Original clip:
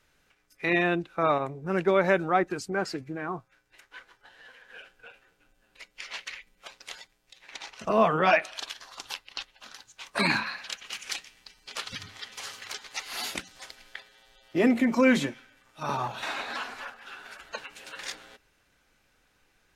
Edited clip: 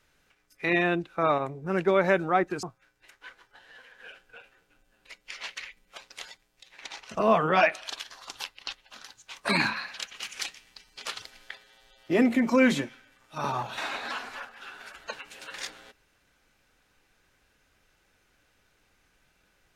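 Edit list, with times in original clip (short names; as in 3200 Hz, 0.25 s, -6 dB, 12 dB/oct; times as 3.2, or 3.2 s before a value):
2.63–3.33 cut
11.92–13.67 cut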